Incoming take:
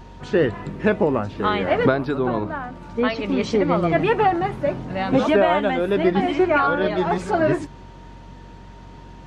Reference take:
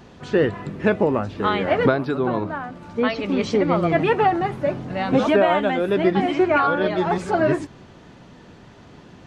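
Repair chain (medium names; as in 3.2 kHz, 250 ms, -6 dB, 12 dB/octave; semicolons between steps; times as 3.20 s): de-hum 46.1 Hz, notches 4; band-stop 930 Hz, Q 30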